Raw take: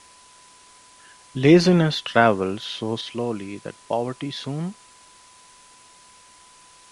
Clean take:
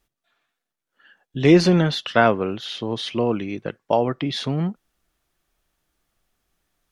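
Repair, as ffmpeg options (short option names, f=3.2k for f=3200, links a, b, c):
-af "bandreject=f=1k:w=30,afwtdn=0.0035,asetnsamples=n=441:p=0,asendcmd='3.01 volume volume 5dB',volume=0dB"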